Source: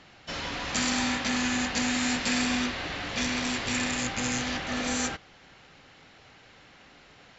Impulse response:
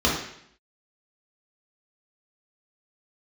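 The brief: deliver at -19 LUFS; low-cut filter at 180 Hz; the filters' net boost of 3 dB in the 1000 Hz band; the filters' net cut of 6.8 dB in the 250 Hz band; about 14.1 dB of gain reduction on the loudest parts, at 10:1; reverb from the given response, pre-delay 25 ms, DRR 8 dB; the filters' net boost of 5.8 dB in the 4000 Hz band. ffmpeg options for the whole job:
-filter_complex "[0:a]highpass=180,equalizer=f=250:t=o:g=-6,equalizer=f=1k:t=o:g=4,equalizer=f=4k:t=o:g=7,acompressor=threshold=-36dB:ratio=10,asplit=2[a][b];[1:a]atrim=start_sample=2205,adelay=25[c];[b][c]afir=irnorm=-1:irlink=0,volume=-24.5dB[d];[a][d]amix=inputs=2:normalize=0,volume=17.5dB"

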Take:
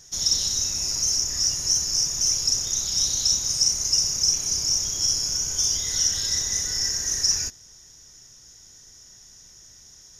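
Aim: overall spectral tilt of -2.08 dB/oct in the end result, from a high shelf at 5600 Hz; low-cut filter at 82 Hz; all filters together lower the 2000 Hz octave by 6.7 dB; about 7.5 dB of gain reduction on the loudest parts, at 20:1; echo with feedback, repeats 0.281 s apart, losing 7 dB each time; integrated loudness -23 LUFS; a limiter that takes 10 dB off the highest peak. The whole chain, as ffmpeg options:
-af "highpass=82,equalizer=f=2k:t=o:g=-7,highshelf=f=5.6k:g=-9,acompressor=threshold=-29dB:ratio=20,alimiter=level_in=4.5dB:limit=-24dB:level=0:latency=1,volume=-4.5dB,aecho=1:1:281|562|843|1124|1405:0.447|0.201|0.0905|0.0407|0.0183,volume=11dB"

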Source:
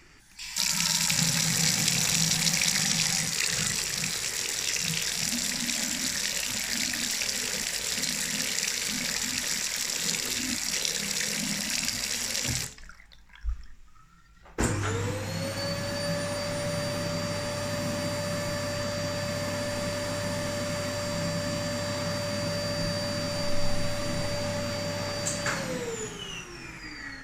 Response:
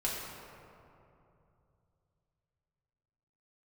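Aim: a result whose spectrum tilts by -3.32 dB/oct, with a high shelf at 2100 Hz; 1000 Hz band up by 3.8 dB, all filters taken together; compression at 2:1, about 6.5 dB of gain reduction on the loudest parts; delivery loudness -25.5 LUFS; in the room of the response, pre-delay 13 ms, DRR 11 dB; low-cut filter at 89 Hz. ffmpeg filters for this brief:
-filter_complex "[0:a]highpass=89,equalizer=f=1k:t=o:g=6.5,highshelf=f=2.1k:g=-7.5,acompressor=threshold=-36dB:ratio=2,asplit=2[a][b];[1:a]atrim=start_sample=2205,adelay=13[c];[b][c]afir=irnorm=-1:irlink=0,volume=-16.5dB[d];[a][d]amix=inputs=2:normalize=0,volume=10dB"

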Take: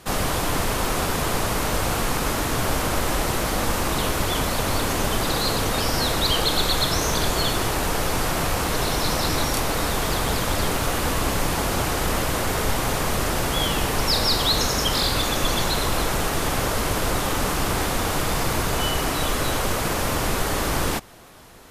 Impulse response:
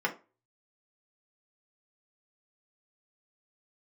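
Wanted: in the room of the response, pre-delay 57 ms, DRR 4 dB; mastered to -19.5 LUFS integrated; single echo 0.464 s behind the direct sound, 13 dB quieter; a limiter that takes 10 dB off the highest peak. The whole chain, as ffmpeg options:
-filter_complex "[0:a]alimiter=limit=-18dB:level=0:latency=1,aecho=1:1:464:0.224,asplit=2[a][b];[1:a]atrim=start_sample=2205,adelay=57[c];[b][c]afir=irnorm=-1:irlink=0,volume=-13dB[d];[a][d]amix=inputs=2:normalize=0,volume=6.5dB"

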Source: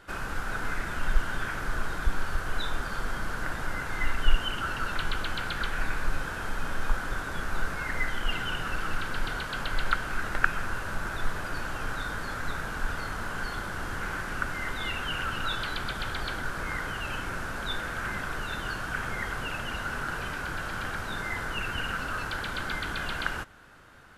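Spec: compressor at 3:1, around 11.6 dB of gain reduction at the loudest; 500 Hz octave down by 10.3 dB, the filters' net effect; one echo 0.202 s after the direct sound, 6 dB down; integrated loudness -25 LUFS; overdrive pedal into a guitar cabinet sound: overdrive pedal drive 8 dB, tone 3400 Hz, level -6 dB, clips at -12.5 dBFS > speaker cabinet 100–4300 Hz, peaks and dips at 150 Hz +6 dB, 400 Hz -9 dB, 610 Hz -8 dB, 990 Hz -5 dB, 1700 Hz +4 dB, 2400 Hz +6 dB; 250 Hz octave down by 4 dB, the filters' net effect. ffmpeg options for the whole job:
-filter_complex "[0:a]equalizer=f=250:t=o:g=-5.5,equalizer=f=500:t=o:g=-3.5,acompressor=threshold=-29dB:ratio=3,aecho=1:1:202:0.501,asplit=2[a][b];[b]highpass=f=720:p=1,volume=8dB,asoftclip=type=tanh:threshold=-12.5dB[c];[a][c]amix=inputs=2:normalize=0,lowpass=f=3.4k:p=1,volume=-6dB,highpass=100,equalizer=f=150:t=q:w=4:g=6,equalizer=f=400:t=q:w=4:g=-9,equalizer=f=610:t=q:w=4:g=-8,equalizer=f=990:t=q:w=4:g=-5,equalizer=f=1.7k:t=q:w=4:g=4,equalizer=f=2.4k:t=q:w=4:g=6,lowpass=f=4.3k:w=0.5412,lowpass=f=4.3k:w=1.3066,volume=5.5dB"

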